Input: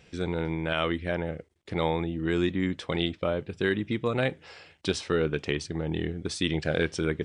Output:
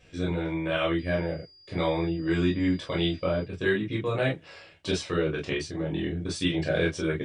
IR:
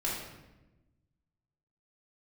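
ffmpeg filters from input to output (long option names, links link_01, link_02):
-filter_complex "[0:a]asettb=1/sr,asplit=3[link_01][link_02][link_03];[link_01]atrim=end=0.994[link_04];[link_02]atrim=start=0.99:end=3.43,asetpts=PTS-STARTPTS,afade=type=in:duration=0.004:curve=qsin,afade=type=out:start_time=2.436:duration=0.004:curve=qsin,aeval=exprs='val(0)+0.00631*sin(2*PI*4800*n/s)':channel_layout=same[link_05];[link_03]atrim=start=3.426[link_06];[link_04][link_05]acrossfade=duration=0.004:curve1=hsin:curve2=qsin[link_07];[link_07][link_06]acrossfade=duration=0.004:curve1=qsin:curve2=hsin[link_08];[1:a]atrim=start_sample=2205,atrim=end_sample=3969,asetrate=74970,aresample=44100[link_09];[link_08][link_09]afir=irnorm=-1:irlink=0"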